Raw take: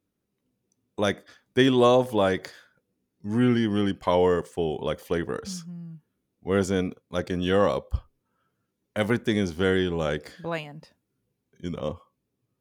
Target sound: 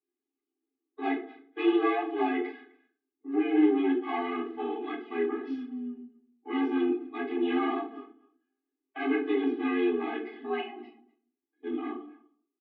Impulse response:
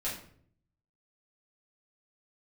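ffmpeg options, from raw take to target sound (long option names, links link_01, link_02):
-filter_complex "[0:a]agate=range=-14dB:threshold=-48dB:ratio=16:detection=peak,asplit=2[link_01][link_02];[link_02]acompressor=threshold=-39dB:ratio=6,volume=-3dB[link_03];[link_01][link_03]amix=inputs=2:normalize=0,asettb=1/sr,asplit=3[link_04][link_05][link_06];[link_04]atrim=end=7.704[link_07];[link_05]atrim=start=7.7:end=9.1,asetpts=PTS-STARTPTS,afade=type=in:duration=0.004:curve=qsin,afade=type=out:start_time=1.396:duration=0.004:curve=qsin,asplit=2[link_08][link_09];[link_09]adelay=21,volume=-3dB[link_10];[link_08][link_10]amix=inputs=2:normalize=0,atrim=end_sample=61740[link_11];[link_06]atrim=start=9.096[link_12];[link_07][link_11]acrossfade=duration=0.004:curve1=hsin:curve2=qsin[link_13];[link_13][link_12]acrossfade=duration=0.004:curve1=qsin:curve2=hsin,asoftclip=type=hard:threshold=-20.5dB,asplit=2[link_14][link_15];[link_15]adelay=250,highpass=300,lowpass=3400,asoftclip=type=hard:threshold=-30dB,volume=-19dB[link_16];[link_14][link_16]amix=inputs=2:normalize=0[link_17];[1:a]atrim=start_sample=2205,asetrate=66150,aresample=44100[link_18];[link_17][link_18]afir=irnorm=-1:irlink=0,highpass=frequency=160:width_type=q:width=0.5412,highpass=frequency=160:width_type=q:width=1.307,lowpass=frequency=3000:width_type=q:width=0.5176,lowpass=frequency=3000:width_type=q:width=0.7071,lowpass=frequency=3000:width_type=q:width=1.932,afreqshift=75,afftfilt=real='re*eq(mod(floor(b*sr/1024/220),2),1)':imag='im*eq(mod(floor(b*sr/1024/220),2),1)':win_size=1024:overlap=0.75"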